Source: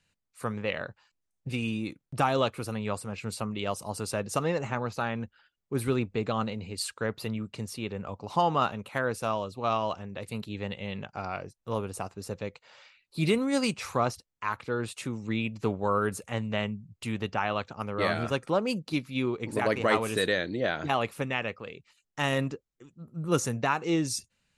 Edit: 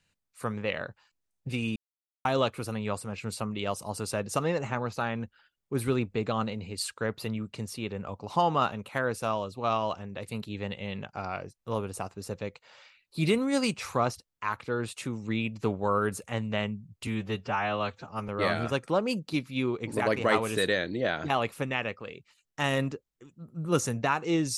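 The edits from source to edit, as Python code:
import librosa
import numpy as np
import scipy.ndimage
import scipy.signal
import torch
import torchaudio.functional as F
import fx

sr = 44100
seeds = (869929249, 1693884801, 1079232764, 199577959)

y = fx.edit(x, sr, fx.silence(start_s=1.76, length_s=0.49),
    fx.stretch_span(start_s=17.07, length_s=0.81, factor=1.5), tone=tone)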